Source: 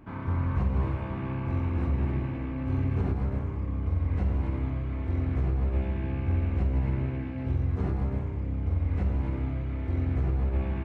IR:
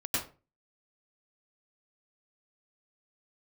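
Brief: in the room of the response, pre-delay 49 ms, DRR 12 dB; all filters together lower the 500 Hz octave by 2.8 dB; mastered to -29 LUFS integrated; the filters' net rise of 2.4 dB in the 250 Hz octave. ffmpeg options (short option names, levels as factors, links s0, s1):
-filter_complex "[0:a]equalizer=f=250:t=o:g=4.5,equalizer=f=500:t=o:g=-6,asplit=2[s0][s1];[1:a]atrim=start_sample=2205,adelay=49[s2];[s1][s2]afir=irnorm=-1:irlink=0,volume=0.119[s3];[s0][s3]amix=inputs=2:normalize=0,volume=0.944"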